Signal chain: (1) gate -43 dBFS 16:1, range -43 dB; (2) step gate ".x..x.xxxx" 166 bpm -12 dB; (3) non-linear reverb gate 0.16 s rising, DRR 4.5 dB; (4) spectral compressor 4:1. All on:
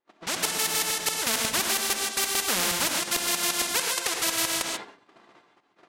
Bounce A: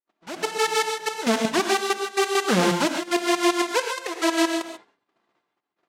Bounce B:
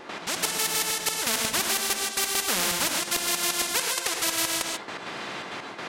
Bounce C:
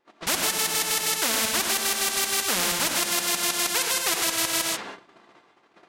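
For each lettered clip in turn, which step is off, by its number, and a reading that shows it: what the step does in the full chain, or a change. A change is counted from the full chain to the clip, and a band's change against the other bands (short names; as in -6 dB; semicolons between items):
4, 8 kHz band -15.5 dB; 1, momentary loudness spread change +7 LU; 2, momentary loudness spread change -1 LU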